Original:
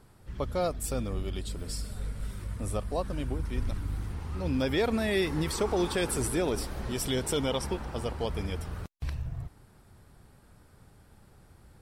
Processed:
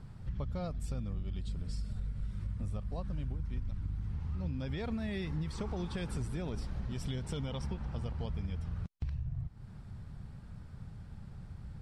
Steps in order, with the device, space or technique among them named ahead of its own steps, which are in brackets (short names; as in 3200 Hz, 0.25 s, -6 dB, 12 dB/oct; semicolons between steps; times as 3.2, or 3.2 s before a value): jukebox (LPF 5900 Hz 12 dB/oct; resonant low shelf 240 Hz +9.5 dB, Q 1.5; compressor 5:1, threshold -35 dBFS, peak gain reduction 18 dB)